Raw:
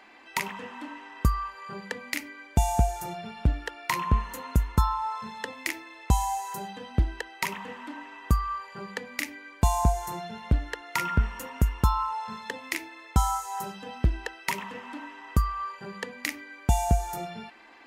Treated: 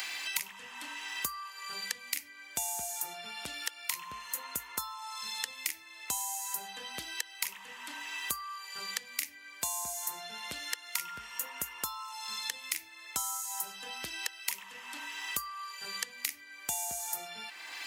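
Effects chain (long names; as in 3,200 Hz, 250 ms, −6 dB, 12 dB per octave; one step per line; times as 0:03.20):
first difference
multiband upward and downward compressor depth 100%
level +4 dB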